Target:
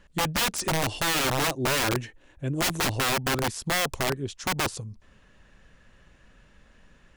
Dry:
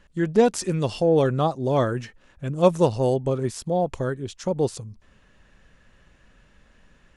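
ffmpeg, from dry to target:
ffmpeg -i in.wav -filter_complex "[0:a]asettb=1/sr,asplit=3[link_01][link_02][link_03];[link_01]atrim=end=0.854[link_04];[link_02]atrim=start=0.85:end=3.17,asetpts=PTS-STARTPTS,afade=type=in:duration=0.004:curve=qsin,afade=type=out:start_time=2.316:duration=0.004:curve=qsin,equalizer=frequency=200:width_type=o:width=0.33:gain=-10,equalizer=frequency=315:width_type=o:width=0.33:gain=7,equalizer=frequency=1250:width_type=o:width=0.33:gain=-7,equalizer=frequency=5000:width_type=o:width=0.33:gain=-7[link_05];[link_03]atrim=start=3.166[link_06];[link_04][link_05]acrossfade=duration=0.004:curve1=hsin:curve2=qsin[link_07];[link_07][link_06]acrossfade=duration=0.004:curve1=qsin:curve2=hsin,aeval=exprs='(mod(9.44*val(0)+1,2)-1)/9.44':channel_layout=same" out.wav

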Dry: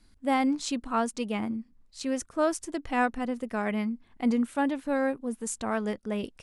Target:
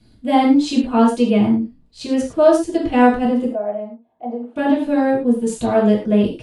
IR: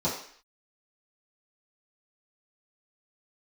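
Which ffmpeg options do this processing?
-filter_complex "[0:a]asettb=1/sr,asplit=3[link_01][link_02][link_03];[link_01]atrim=end=3.494[link_04];[link_02]atrim=start=3.49:end=4.56,asetpts=PTS-STARTPTS,afade=type=in:duration=0.004:curve=qsin,afade=type=out:start_time=1.066:duration=0.004:curve=qsin,bandpass=frequency=680:width_type=q:width=4.7:csg=0[link_05];[link_03]atrim=start=4.556[link_06];[link_04][link_05]acrossfade=duration=0.004:curve1=hsin:curve2=qsin[link_07];[link_07][link_06]acrossfade=duration=0.004:curve1=qsin:curve2=hsin[link_08];[1:a]atrim=start_sample=2205,afade=type=out:start_time=0.13:duration=0.01,atrim=end_sample=6174,asetrate=30429,aresample=44100[link_09];[link_08][link_09]afir=irnorm=-1:irlink=0,volume=-2dB"

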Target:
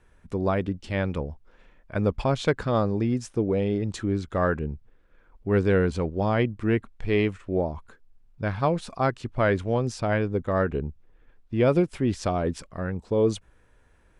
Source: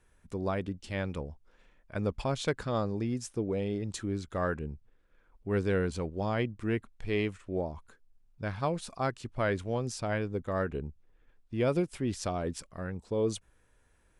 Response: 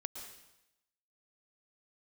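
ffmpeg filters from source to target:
-af "lowpass=frequency=3100:poles=1,volume=7.5dB"

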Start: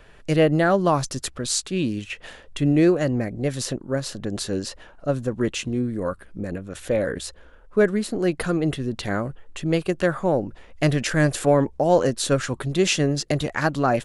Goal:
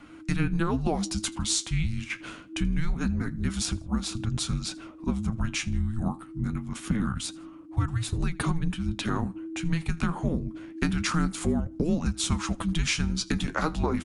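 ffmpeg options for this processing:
ffmpeg -i in.wav -filter_complex "[0:a]flanger=delay=3.3:depth=8.8:regen=61:speed=0.25:shape=triangular,afreqshift=-330,acompressor=threshold=-26dB:ratio=6,asplit=2[link_01][link_02];[link_02]aecho=0:1:81|162:0.0631|0.0221[link_03];[link_01][link_03]amix=inputs=2:normalize=0,volume=4dB" out.wav

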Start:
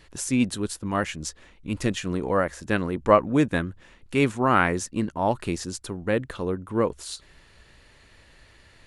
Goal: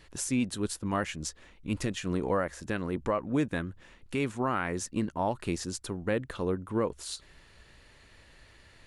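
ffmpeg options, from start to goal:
ffmpeg -i in.wav -af "alimiter=limit=-16dB:level=0:latency=1:release=251,volume=-2.5dB" out.wav

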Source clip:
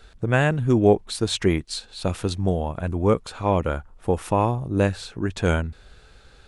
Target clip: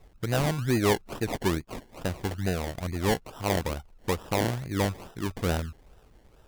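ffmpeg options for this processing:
ffmpeg -i in.wav -af "acrusher=samples=28:mix=1:aa=0.000001:lfo=1:lforange=16.8:lforate=2.3,volume=11dB,asoftclip=hard,volume=-11dB,volume=-6dB" out.wav

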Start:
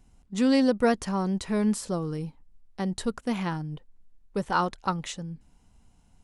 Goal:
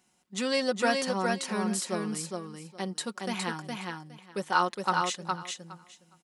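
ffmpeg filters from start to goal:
ffmpeg -i in.wav -filter_complex "[0:a]highpass=360,equalizer=frequency=550:width_type=o:width=2:gain=-6,aecho=1:1:5.5:0.54,asplit=2[link_01][link_02];[link_02]aecho=0:1:413|826|1239:0.668|0.107|0.0171[link_03];[link_01][link_03]amix=inputs=2:normalize=0,volume=2dB" out.wav

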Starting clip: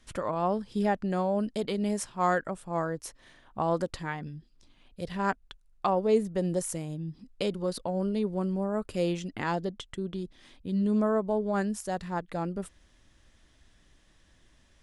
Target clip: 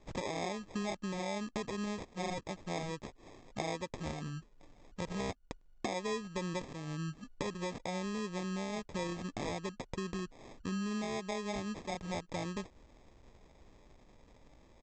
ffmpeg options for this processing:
ffmpeg -i in.wav -af "aemphasis=mode=production:type=50fm,acompressor=threshold=-36dB:ratio=6,aresample=16000,acrusher=samples=11:mix=1:aa=0.000001,aresample=44100,volume=1dB" out.wav

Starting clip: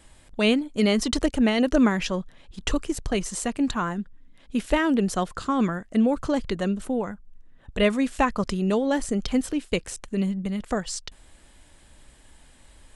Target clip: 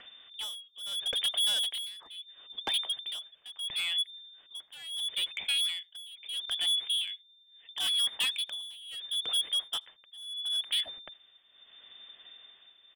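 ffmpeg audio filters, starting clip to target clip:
ffmpeg -i in.wav -filter_complex "[0:a]adynamicequalizer=threshold=0.02:dfrequency=220:dqfactor=1.8:tfrequency=220:tqfactor=1.8:attack=5:release=100:ratio=0.375:range=3:mode=boostabove:tftype=bell,lowpass=frequency=3100:width_type=q:width=0.5098,lowpass=frequency=3100:width_type=q:width=0.6013,lowpass=frequency=3100:width_type=q:width=0.9,lowpass=frequency=3100:width_type=q:width=2.563,afreqshift=-3600,volume=22.5dB,asoftclip=hard,volume=-22.5dB,tremolo=f=0.74:d=0.91,asplit=2[link_01][link_02];[link_02]adelay=80,highpass=300,lowpass=3400,asoftclip=type=hard:threshold=-30.5dB,volume=-28dB[link_03];[link_01][link_03]amix=inputs=2:normalize=0,acompressor=mode=upward:threshold=-43dB:ratio=2.5,volume=-3dB" out.wav

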